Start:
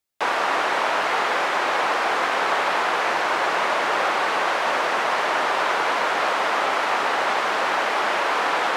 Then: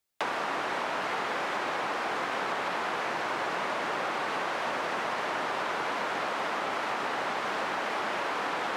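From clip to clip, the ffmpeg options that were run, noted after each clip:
-filter_complex "[0:a]acrossover=split=270[a][b];[b]acompressor=threshold=-30dB:ratio=5[c];[a][c]amix=inputs=2:normalize=0"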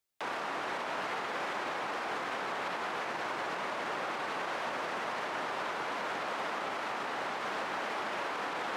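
-af "alimiter=limit=-23.5dB:level=0:latency=1:release=26,volume=-3.5dB"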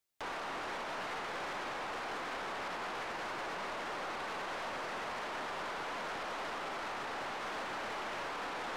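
-af "aeval=exprs='(tanh(63.1*val(0)+0.15)-tanh(0.15))/63.1':c=same"

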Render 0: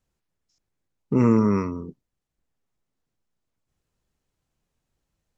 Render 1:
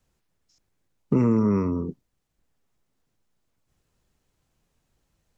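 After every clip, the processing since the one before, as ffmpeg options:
-filter_complex "[0:a]acrossover=split=290|960[a][b][c];[a]acompressor=threshold=-27dB:ratio=4[d];[b]acompressor=threshold=-33dB:ratio=4[e];[c]acompressor=threshold=-49dB:ratio=4[f];[d][e][f]amix=inputs=3:normalize=0,volume=6dB"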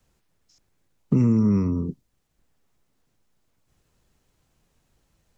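-filter_complex "[0:a]acrossover=split=260|3000[a][b][c];[b]acompressor=threshold=-48dB:ratio=2[d];[a][d][c]amix=inputs=3:normalize=0,volume=4.5dB"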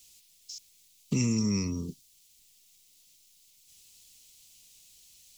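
-af "aexciter=amount=10.9:drive=8.6:freq=2.4k,volume=-8.5dB"

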